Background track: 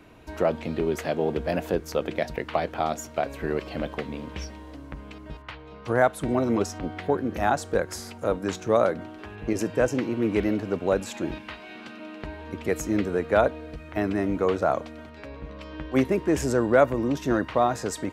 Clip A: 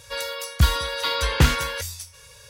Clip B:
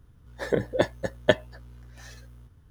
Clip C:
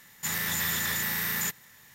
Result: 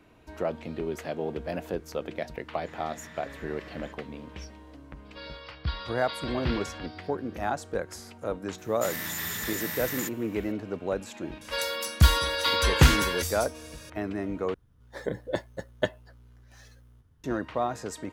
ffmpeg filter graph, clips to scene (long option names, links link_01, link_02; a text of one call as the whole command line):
ffmpeg -i bed.wav -i cue0.wav -i cue1.wav -i cue2.wav -filter_complex "[3:a]asplit=2[link_01][link_02];[1:a]asplit=2[link_03][link_04];[0:a]volume=-6.5dB[link_05];[link_01]lowpass=2600[link_06];[link_03]aresample=11025,aresample=44100[link_07];[link_05]asplit=2[link_08][link_09];[link_08]atrim=end=14.544[link_10];[2:a]atrim=end=2.7,asetpts=PTS-STARTPTS,volume=-7dB[link_11];[link_09]atrim=start=17.236[link_12];[link_06]atrim=end=1.94,asetpts=PTS-STARTPTS,volume=-15dB,afade=type=in:duration=0.004:curve=hsin,afade=type=out:start_time=1.936:duration=0.004:curve=hsin,adelay=2420[link_13];[link_07]atrim=end=2.49,asetpts=PTS-STARTPTS,volume=-13.5dB,afade=type=in:duration=0.004:curve=hsin,afade=type=out:start_time=2.486:duration=0.004:curve=hsin,adelay=222705S[link_14];[link_02]atrim=end=1.94,asetpts=PTS-STARTPTS,volume=-4.5dB,afade=type=in:duration=0.004:curve=hsin,afade=type=out:start_time=1.936:duration=0.004:curve=hsin,adelay=378378S[link_15];[link_04]atrim=end=2.49,asetpts=PTS-STARTPTS,volume=-0.5dB,afade=type=in:duration=0.004:curve=hsin,afade=type=out:start_time=2.486:duration=0.004:curve=hsin,adelay=11410[link_16];[link_10][link_11]acrossfade=duration=0.004:curve1=hsin:curve2=hsin[link_17];[link_17][link_12]acrossfade=duration=0.004:curve1=hsin:curve2=hsin[link_18];[link_18][link_13][link_14][link_15][link_16]amix=inputs=5:normalize=0" out.wav